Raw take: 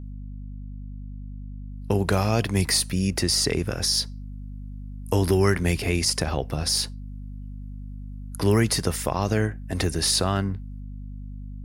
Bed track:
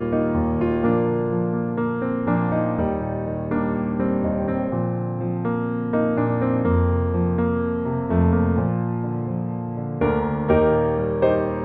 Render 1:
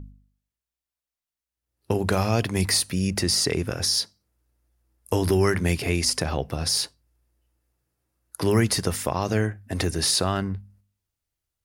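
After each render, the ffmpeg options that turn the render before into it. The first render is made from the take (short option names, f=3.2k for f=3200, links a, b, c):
-af "bandreject=f=50:t=h:w=4,bandreject=f=100:t=h:w=4,bandreject=f=150:t=h:w=4,bandreject=f=200:t=h:w=4,bandreject=f=250:t=h:w=4"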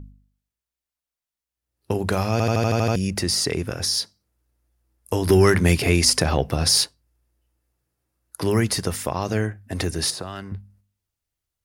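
-filter_complex "[0:a]asettb=1/sr,asplit=3[a][b][c];[a]atrim=end=5.294[d];[b]atrim=start=5.29:end=6.84,asetpts=PTS-STARTPTS,afade=t=in:d=0.004:c=qsin,afade=t=out:st=1.546:d=0.004:c=qsin,acontrast=54[e];[c]atrim=start=6.836[f];[d][e]acrossfade=d=0.004:c1=hsin:c2=qsin[g];[g][f]acrossfade=d=0.004:c1=qsin:c2=hsin,asettb=1/sr,asplit=3[h][i][j];[h]atrim=end=10.104[k];[i]atrim=start=10.1:end=10.52,asetpts=PTS-STARTPTS,afade=t=in:d=0.004:c=qsin,afade=t=out:st=0.416:d=0.004:c=qsin,acrossover=split=370|1500[l][m][n];[l]acompressor=threshold=-36dB:ratio=4[o];[m]acompressor=threshold=-35dB:ratio=4[p];[n]acompressor=threshold=-34dB:ratio=4[q];[o][p][q]amix=inputs=3:normalize=0[r];[j]atrim=start=10.516[s];[k][r]acrossfade=d=0.004:c1=hsin:c2=qsin[t];[t][s]acrossfade=d=0.004:c1=qsin:c2=hsin,asplit=9[u][v][w][x][y][z][aa][ab][ac];[u]atrim=end=2.402[ad];[v]atrim=start=2.318:end=2.402[ae];[w]atrim=start=2.318:end=2.402[af];[x]atrim=start=2.318:end=2.402[ag];[y]atrim=start=2.318:end=2.402[ah];[z]atrim=start=2.318:end=2.402[ai];[aa]atrim=start=2.318:end=2.402[aj];[ab]atrim=start=2.318:end=2.402[ak];[ac]atrim=start=2.958[al];[ad][ae]acrossfade=d=0.004:c1=hsin:c2=hsin[am];[am][af]acrossfade=d=0.004:c1=hsin:c2=hsin[an];[an][ag]acrossfade=d=0.004:c1=hsin:c2=hsin[ao];[ao][ah]acrossfade=d=0.004:c1=hsin:c2=hsin[ap];[ap][ai]acrossfade=d=0.004:c1=hsin:c2=hsin[aq];[aq][aj]acrossfade=d=0.004:c1=hsin:c2=hsin[ar];[ar][ak]acrossfade=d=0.004:c1=hsin:c2=hsin[as];[as][al]acrossfade=d=0.004:c1=hsin:c2=hsin"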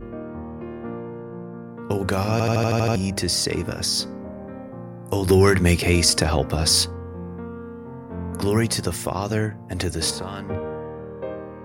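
-filter_complex "[1:a]volume=-13dB[a];[0:a][a]amix=inputs=2:normalize=0"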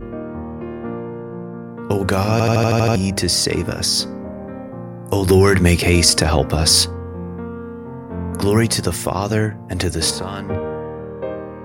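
-af "volume=5dB,alimiter=limit=-2dB:level=0:latency=1"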